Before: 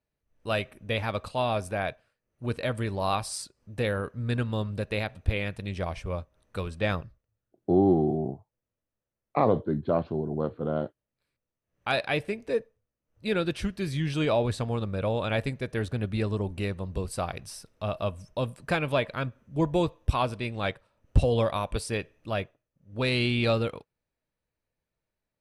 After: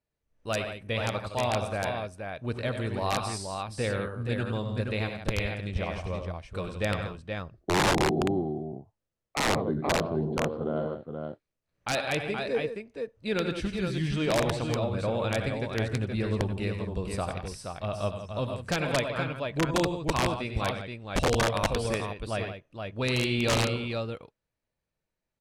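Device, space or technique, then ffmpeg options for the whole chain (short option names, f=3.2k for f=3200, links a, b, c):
overflowing digital effects unit: -af "aecho=1:1:71|86|97|166|474:0.141|0.158|0.376|0.299|0.531,aeval=exprs='(mod(5.96*val(0)+1,2)-1)/5.96':c=same,lowpass=8.9k,volume=-2dB"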